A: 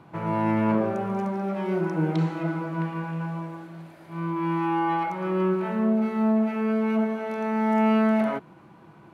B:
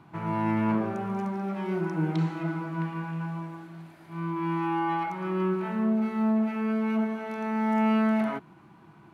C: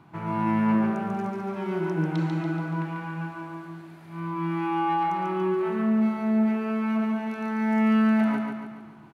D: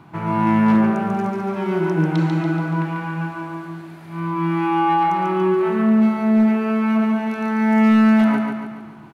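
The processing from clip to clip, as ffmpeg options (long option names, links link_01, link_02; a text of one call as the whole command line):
ffmpeg -i in.wav -af "equalizer=frequency=530:width=2.9:gain=-9.5,volume=-2dB" out.wav
ffmpeg -i in.wav -af "aecho=1:1:142|284|426|568|710|852:0.631|0.315|0.158|0.0789|0.0394|0.0197" out.wav
ffmpeg -i in.wav -af "asoftclip=type=hard:threshold=-16.5dB,volume=7.5dB" out.wav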